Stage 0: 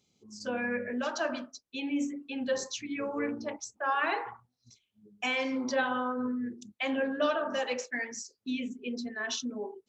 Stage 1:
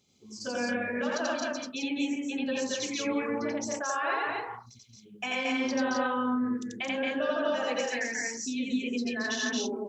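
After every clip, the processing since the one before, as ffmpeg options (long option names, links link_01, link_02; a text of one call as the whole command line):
ffmpeg -i in.wav -filter_complex "[0:a]acompressor=threshold=-35dB:ratio=4,asplit=2[link_01][link_02];[link_02]aecho=0:1:87.46|224.5|259.5:1|0.794|0.891[link_03];[link_01][link_03]amix=inputs=2:normalize=0,volume=2.5dB" out.wav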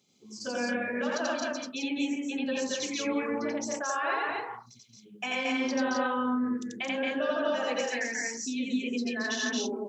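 ffmpeg -i in.wav -af "highpass=frequency=130:width=0.5412,highpass=frequency=130:width=1.3066" out.wav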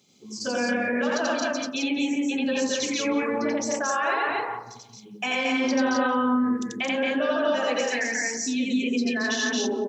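ffmpeg -i in.wav -filter_complex "[0:a]asplit=2[link_01][link_02];[link_02]alimiter=level_in=4dB:limit=-24dB:level=0:latency=1,volume=-4dB,volume=0dB[link_03];[link_01][link_03]amix=inputs=2:normalize=0,asplit=2[link_04][link_05];[link_05]adelay=179,lowpass=frequency=1100:poles=1,volume=-11.5dB,asplit=2[link_06][link_07];[link_07]adelay=179,lowpass=frequency=1100:poles=1,volume=0.36,asplit=2[link_08][link_09];[link_09]adelay=179,lowpass=frequency=1100:poles=1,volume=0.36,asplit=2[link_10][link_11];[link_11]adelay=179,lowpass=frequency=1100:poles=1,volume=0.36[link_12];[link_04][link_06][link_08][link_10][link_12]amix=inputs=5:normalize=0,volume=1.5dB" out.wav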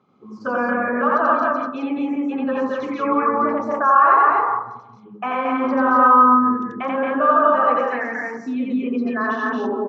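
ffmpeg -i in.wav -af "lowpass=frequency=1200:width_type=q:width=6.9,volume=2.5dB" out.wav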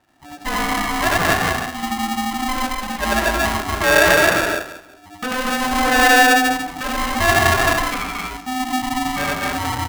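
ffmpeg -i in.wav -af "aeval=exprs='val(0)*sgn(sin(2*PI*510*n/s))':channel_layout=same" out.wav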